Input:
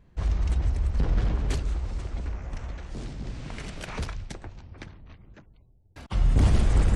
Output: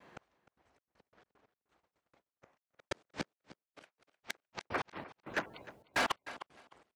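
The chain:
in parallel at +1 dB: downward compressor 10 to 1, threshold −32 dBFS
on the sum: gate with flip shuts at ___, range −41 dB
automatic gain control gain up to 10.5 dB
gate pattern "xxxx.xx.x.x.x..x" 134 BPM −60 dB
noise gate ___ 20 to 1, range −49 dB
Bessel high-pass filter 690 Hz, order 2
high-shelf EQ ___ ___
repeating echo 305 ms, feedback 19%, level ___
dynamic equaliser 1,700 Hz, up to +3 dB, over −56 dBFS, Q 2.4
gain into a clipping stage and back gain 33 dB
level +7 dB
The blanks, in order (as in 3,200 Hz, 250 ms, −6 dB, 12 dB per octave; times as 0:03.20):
−22 dBFS, −54 dBFS, 3,300 Hz, −9.5 dB, −18 dB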